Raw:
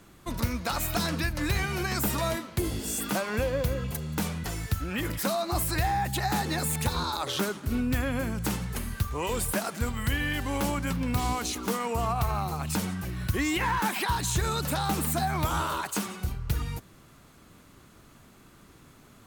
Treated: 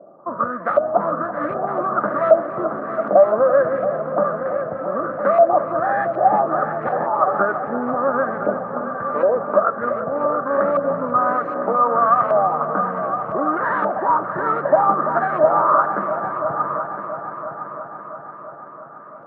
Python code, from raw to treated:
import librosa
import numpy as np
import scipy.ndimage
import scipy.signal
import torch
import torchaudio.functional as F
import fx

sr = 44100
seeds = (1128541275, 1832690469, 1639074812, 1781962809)

p1 = scipy.ndimage.median_filter(x, 25, mode='constant')
p2 = scipy.signal.sosfilt(scipy.signal.butter(4, 170.0, 'highpass', fs=sr, output='sos'), p1)
p3 = fx.high_shelf_res(p2, sr, hz=2000.0, db=-6.5, q=3.0)
p4 = fx.small_body(p3, sr, hz=(590.0, 1200.0), ring_ms=25, db=17)
p5 = fx.filter_lfo_lowpass(p4, sr, shape='saw_up', hz=1.3, low_hz=610.0, high_hz=2400.0, q=4.0)
y = p5 + fx.echo_heads(p5, sr, ms=337, heads='all three', feedback_pct=57, wet_db=-13.0, dry=0)